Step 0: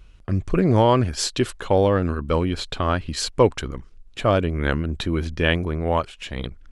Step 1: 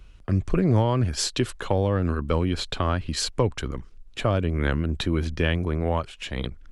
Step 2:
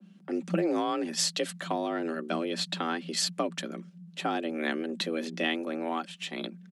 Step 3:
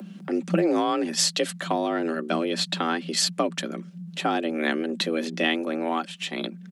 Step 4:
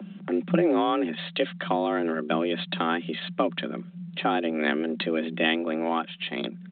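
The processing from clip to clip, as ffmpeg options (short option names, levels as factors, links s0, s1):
-filter_complex "[0:a]acrossover=split=180[s0][s1];[s1]acompressor=threshold=0.0794:ratio=4[s2];[s0][s2]amix=inputs=2:normalize=0"
-af "aecho=1:1:5:0.35,afreqshift=160,adynamicequalizer=threshold=0.0126:dfrequency=1500:dqfactor=0.7:tfrequency=1500:tqfactor=0.7:attack=5:release=100:ratio=0.375:range=3.5:mode=boostabove:tftype=highshelf,volume=0.398"
-af "acompressor=mode=upward:threshold=0.0141:ratio=2.5,volume=1.88"
-ar 8000 -c:a pcm_alaw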